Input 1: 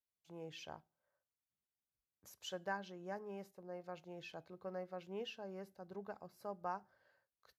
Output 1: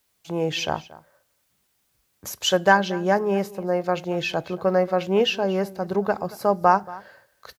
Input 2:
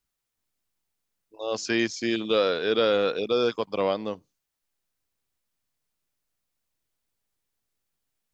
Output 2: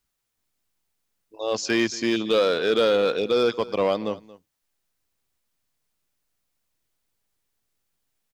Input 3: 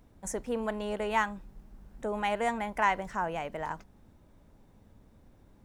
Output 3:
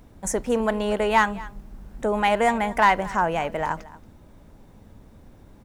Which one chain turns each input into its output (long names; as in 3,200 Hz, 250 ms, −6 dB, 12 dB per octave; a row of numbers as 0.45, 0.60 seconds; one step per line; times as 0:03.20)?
in parallel at −10 dB: wave folding −21.5 dBFS
on the sum: single-tap delay 229 ms −19.5 dB
loudness normalisation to −23 LKFS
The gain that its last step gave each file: +22.5, +1.5, +7.0 decibels